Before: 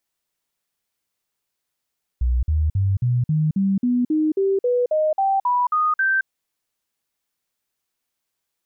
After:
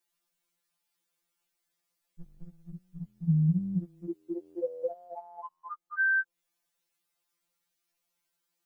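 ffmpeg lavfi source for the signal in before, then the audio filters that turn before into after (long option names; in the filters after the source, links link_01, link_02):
-f lavfi -i "aevalsrc='0.158*clip(min(mod(t,0.27),0.22-mod(t,0.27))/0.005,0,1)*sin(2*PI*61.4*pow(2,floor(t/0.27)/3)*mod(t,0.27))':duration=4.05:sample_rate=44100"
-filter_complex "[0:a]acrossover=split=760[link_01][link_02];[link_02]acompressor=threshold=-31dB:ratio=6[link_03];[link_01][link_03]amix=inputs=2:normalize=0,afftfilt=real='re*2.83*eq(mod(b,8),0)':imag='im*2.83*eq(mod(b,8),0)':win_size=2048:overlap=0.75"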